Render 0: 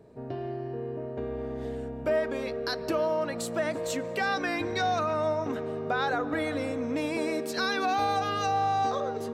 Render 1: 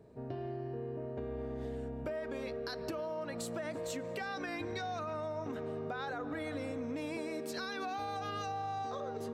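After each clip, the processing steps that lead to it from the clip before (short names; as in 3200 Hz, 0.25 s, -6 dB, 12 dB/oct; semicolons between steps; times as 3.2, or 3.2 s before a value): limiter -21.5 dBFS, peak gain reduction 4 dB; compressor, threshold -31 dBFS, peak gain reduction 6 dB; bell 66 Hz +3.5 dB 2.8 oct; gain -5 dB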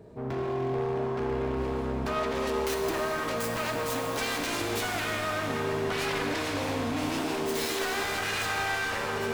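self-modulated delay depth 0.66 ms; wavefolder -34 dBFS; shimmer reverb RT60 3.4 s, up +7 st, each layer -8 dB, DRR 1.5 dB; gain +8 dB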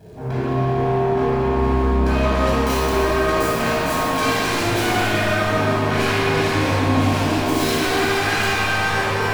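crackle 350/s -50 dBFS; reverb RT60 2.1 s, pre-delay 20 ms, DRR -7 dB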